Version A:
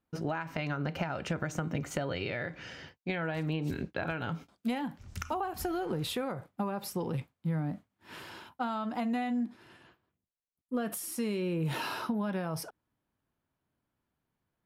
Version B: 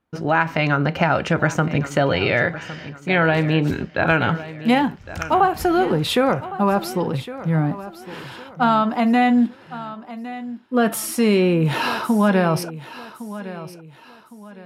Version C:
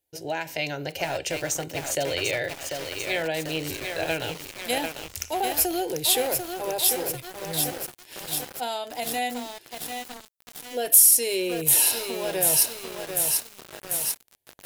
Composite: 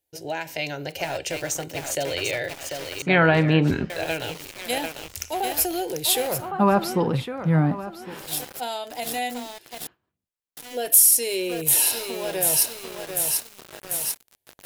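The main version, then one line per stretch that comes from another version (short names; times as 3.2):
C
3.02–3.9 from B
6.4–8.18 from B, crossfade 0.24 s
9.87–10.57 from A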